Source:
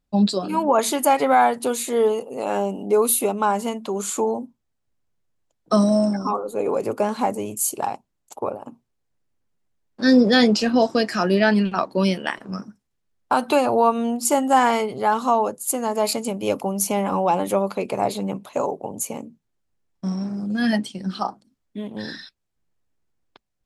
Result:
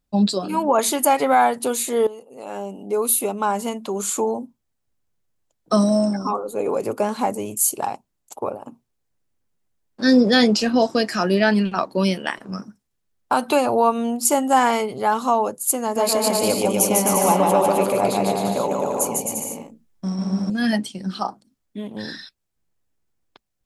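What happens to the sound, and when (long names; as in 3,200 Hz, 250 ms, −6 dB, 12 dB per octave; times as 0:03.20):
0:02.07–0:03.76: fade in linear, from −15.5 dB
0:15.81–0:20.50: bouncing-ball delay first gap 150 ms, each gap 0.75×, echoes 6, each echo −2 dB
whole clip: high-shelf EQ 7,100 Hz +6 dB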